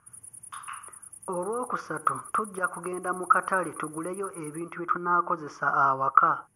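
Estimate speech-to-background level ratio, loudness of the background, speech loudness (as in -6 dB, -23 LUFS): 17.0 dB, -44.5 LUFS, -27.5 LUFS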